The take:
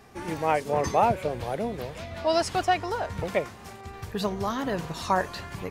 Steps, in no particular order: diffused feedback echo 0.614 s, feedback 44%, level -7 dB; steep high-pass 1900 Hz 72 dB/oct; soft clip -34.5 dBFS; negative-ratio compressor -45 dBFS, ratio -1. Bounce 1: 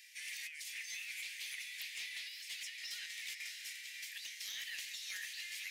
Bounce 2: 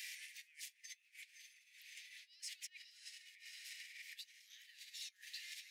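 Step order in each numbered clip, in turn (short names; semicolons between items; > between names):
steep high-pass > negative-ratio compressor > diffused feedback echo > soft clip; diffused feedback echo > negative-ratio compressor > soft clip > steep high-pass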